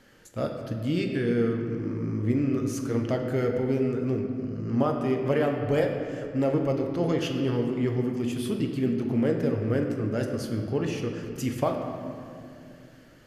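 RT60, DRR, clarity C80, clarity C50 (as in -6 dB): 2.5 s, 2.0 dB, 5.5 dB, 4.5 dB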